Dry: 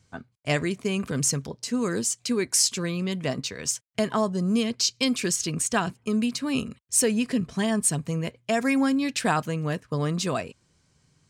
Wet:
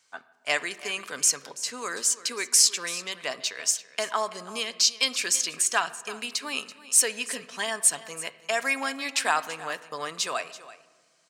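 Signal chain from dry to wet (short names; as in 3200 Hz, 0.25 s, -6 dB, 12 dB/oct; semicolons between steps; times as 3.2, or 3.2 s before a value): HPF 860 Hz 12 dB/oct; echo 0.333 s -16.5 dB; reverb RT60 1.6 s, pre-delay 7 ms, DRR 14.5 dB; gain +3 dB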